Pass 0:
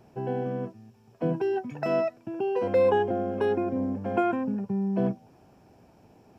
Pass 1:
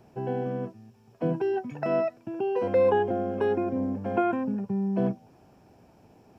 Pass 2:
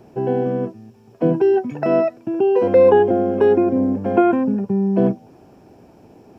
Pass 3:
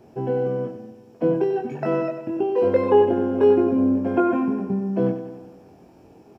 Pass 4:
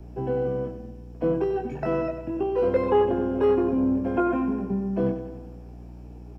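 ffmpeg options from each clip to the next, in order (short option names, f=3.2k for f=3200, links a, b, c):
-filter_complex "[0:a]acrossover=split=2800[a][b];[b]acompressor=threshold=-55dB:ratio=4:attack=1:release=60[c];[a][c]amix=inputs=2:normalize=0"
-af "equalizer=f=350:w=1:g=6.5,volume=6dB"
-filter_complex "[0:a]asplit=2[a][b];[b]adelay=22,volume=-3dB[c];[a][c]amix=inputs=2:normalize=0,aecho=1:1:95|190|285|380|475|570|665:0.316|0.187|0.11|0.0649|0.0383|0.0226|0.0133,volume=-5dB"
-filter_complex "[0:a]aeval=exprs='val(0)+0.0126*(sin(2*PI*60*n/s)+sin(2*PI*2*60*n/s)/2+sin(2*PI*3*60*n/s)/3+sin(2*PI*4*60*n/s)/4+sin(2*PI*5*60*n/s)/5)':c=same,acrossover=split=250|470|1100[a][b][c][d];[b]asoftclip=type=tanh:threshold=-22.5dB[e];[a][e][c][d]amix=inputs=4:normalize=0,volume=-2.5dB"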